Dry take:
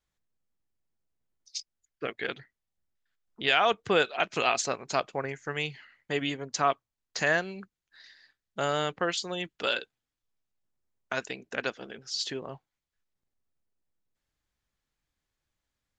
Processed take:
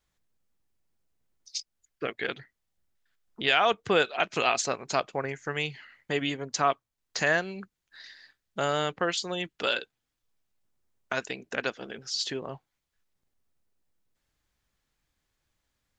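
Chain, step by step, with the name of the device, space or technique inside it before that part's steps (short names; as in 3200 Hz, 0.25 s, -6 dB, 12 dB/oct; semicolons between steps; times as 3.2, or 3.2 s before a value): parallel compression (in parallel at -1 dB: compressor, threshold -44 dBFS, peak gain reduction 22.5 dB)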